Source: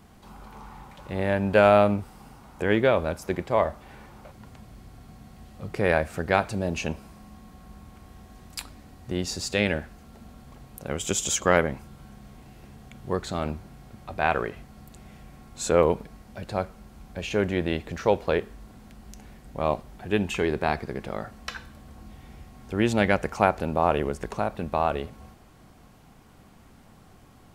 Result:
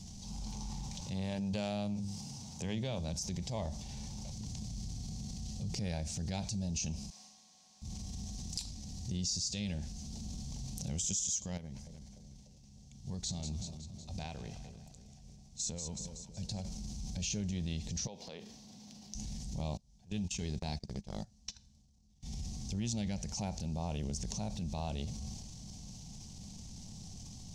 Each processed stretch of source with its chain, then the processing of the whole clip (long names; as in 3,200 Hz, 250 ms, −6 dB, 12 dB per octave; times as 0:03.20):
0:01.01–0:03.14: high-pass filter 78 Hz 24 dB per octave + mains-hum notches 50/100/150/200/250/300/350 Hz
0:07.10–0:07.82: high-pass filter 1,000 Hz + high-shelf EQ 2,500 Hz −11.5 dB
0:11.57–0:16.65: downward compressor 10 to 1, threshold −32 dBFS + downward expander −37 dBFS + echo with a time of its own for lows and highs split 680 Hz, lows 297 ms, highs 186 ms, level −12.5 dB
0:18.07–0:19.15: high-pass filter 290 Hz + parametric band 8,300 Hz −10.5 dB 1.2 octaves + downward compressor 4 to 1, threshold −37 dBFS
0:19.77–0:22.23: noise gate −33 dBFS, range −28 dB + floating-point word with a short mantissa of 6 bits
whole clip: drawn EQ curve 200 Hz 0 dB, 340 Hz −18 dB, 870 Hz −13 dB, 1,300 Hz −29 dB, 6,000 Hz +13 dB, 13,000 Hz −16 dB; downward compressor 6 to 1, threshold −40 dBFS; transient designer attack −5 dB, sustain +6 dB; level +6 dB